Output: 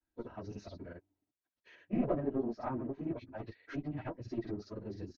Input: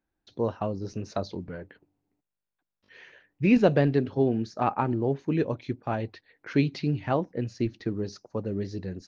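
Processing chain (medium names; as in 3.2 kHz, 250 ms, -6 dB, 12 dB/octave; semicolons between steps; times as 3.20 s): single-diode clipper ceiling -24 dBFS; low-pass that closes with the level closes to 1 kHz, closed at -25 dBFS; comb 3.1 ms, depth 33%; granulator, pitch spread up and down by 0 st; plain phase-vocoder stretch 0.57×; trim -3 dB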